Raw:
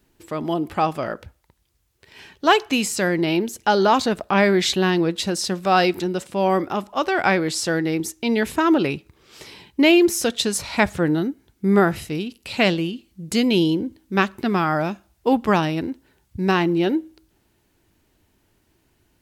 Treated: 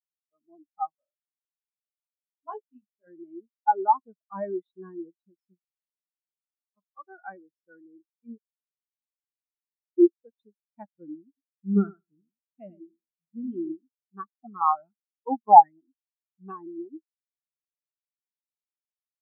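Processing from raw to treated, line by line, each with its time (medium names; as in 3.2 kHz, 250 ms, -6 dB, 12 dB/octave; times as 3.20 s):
0.89–3.07 s: chorus 1.9 Hz, delay 18 ms, depth 2.4 ms
5.58–6.77 s: spectrum-flattening compressor 10:1
8.38–9.98 s: mute
11.27–13.72 s: feedback delay 100 ms, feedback 37%, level -5.5 dB
14.32–16.52 s: step-sequenced low-pass 6.9 Hz 790–4100 Hz
whole clip: dynamic bell 1.2 kHz, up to +8 dB, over -34 dBFS, Q 1.2; spectral contrast expander 4:1; trim -2 dB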